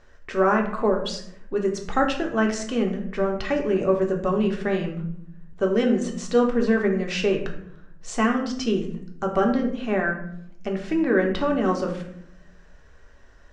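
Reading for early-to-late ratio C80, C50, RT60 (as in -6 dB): 11.0 dB, 8.0 dB, 0.70 s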